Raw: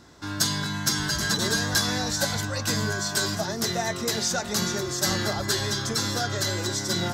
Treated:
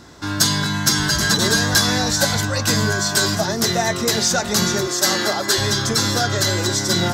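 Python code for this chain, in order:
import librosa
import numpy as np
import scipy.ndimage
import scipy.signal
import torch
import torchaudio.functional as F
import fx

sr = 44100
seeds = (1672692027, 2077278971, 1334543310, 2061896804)

p1 = fx.highpass(x, sr, hz=270.0, slope=12, at=(4.87, 5.58))
p2 = 10.0 ** (-18.5 / 20.0) * np.tanh(p1 / 10.0 ** (-18.5 / 20.0))
p3 = p1 + (p2 * 10.0 ** (-9.0 / 20.0))
y = p3 * 10.0 ** (5.5 / 20.0)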